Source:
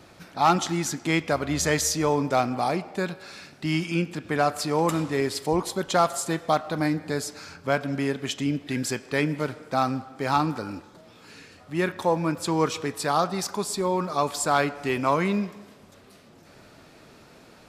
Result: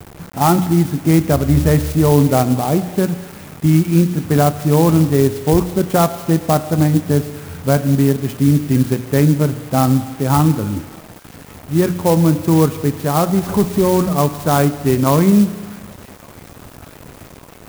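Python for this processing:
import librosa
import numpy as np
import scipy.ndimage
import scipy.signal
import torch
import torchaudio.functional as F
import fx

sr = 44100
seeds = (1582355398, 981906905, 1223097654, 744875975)

p1 = fx.zero_step(x, sr, step_db=-28.5, at=(13.43, 14.09))
p2 = fx.tilt_eq(p1, sr, slope=-4.0)
p3 = fx.level_steps(p2, sr, step_db=10)
p4 = p2 + (p3 * 10.0 ** (-1.0 / 20.0))
p5 = scipy.signal.sosfilt(scipy.signal.butter(2, 66.0, 'highpass', fs=sr, output='sos'), p4)
p6 = fx.low_shelf(p5, sr, hz=130.0, db=6.5)
p7 = fx.hum_notches(p6, sr, base_hz=60, count=5)
p8 = fx.rev_spring(p7, sr, rt60_s=1.5, pass_ms=(34,), chirp_ms=55, drr_db=16.5)
p9 = fx.quant_dither(p8, sr, seeds[0], bits=6, dither='none')
p10 = p9 + fx.echo_wet_highpass(p9, sr, ms=1158, feedback_pct=72, hz=3000.0, wet_db=-12, dry=0)
y = fx.clock_jitter(p10, sr, seeds[1], jitter_ms=0.059)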